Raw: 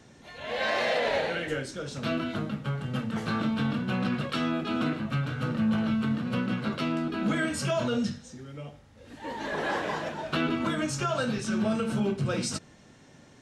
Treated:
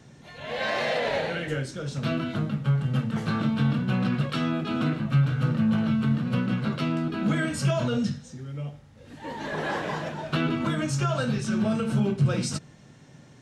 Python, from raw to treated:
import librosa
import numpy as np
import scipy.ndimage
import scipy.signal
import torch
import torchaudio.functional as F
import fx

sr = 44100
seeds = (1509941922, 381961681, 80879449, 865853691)

y = fx.peak_eq(x, sr, hz=140.0, db=9.0, octaves=0.74)